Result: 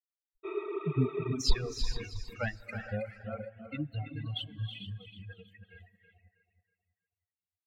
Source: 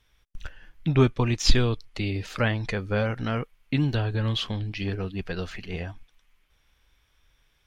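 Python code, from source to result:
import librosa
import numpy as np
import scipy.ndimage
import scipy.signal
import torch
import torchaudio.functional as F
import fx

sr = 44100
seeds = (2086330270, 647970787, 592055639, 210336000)

p1 = fx.bin_expand(x, sr, power=3.0)
p2 = p1 + fx.echo_feedback(p1, sr, ms=320, feedback_pct=36, wet_db=-8, dry=0)
p3 = fx.spec_repair(p2, sr, seeds[0], start_s=0.47, length_s=0.83, low_hz=320.0, high_hz=7400.0, source='after')
p4 = fx.rev_gated(p3, sr, seeds[1], gate_ms=490, shape='rising', drr_db=5.0)
p5 = fx.dereverb_blind(p4, sr, rt60_s=1.1)
y = F.gain(torch.from_numpy(p5), -5.0).numpy()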